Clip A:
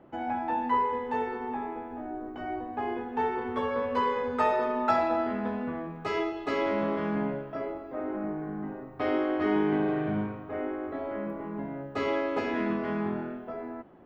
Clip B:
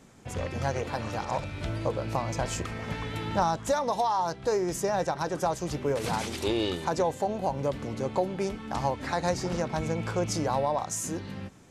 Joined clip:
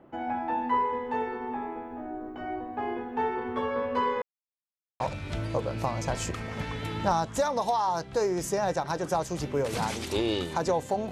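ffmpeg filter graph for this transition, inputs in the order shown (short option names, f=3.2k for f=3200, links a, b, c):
-filter_complex "[0:a]apad=whole_dur=11.11,atrim=end=11.11,asplit=2[a][b];[a]atrim=end=4.22,asetpts=PTS-STARTPTS,afade=t=out:st=4.216:d=0.004:c=hsin[c];[b]atrim=start=4.22:end=5,asetpts=PTS-STARTPTS,volume=0[d];[1:a]atrim=start=1.31:end=7.42,asetpts=PTS-STARTPTS,afade=t=in:d=0.004:c=hsin[e];[c][d][e]concat=n=3:v=0:a=1"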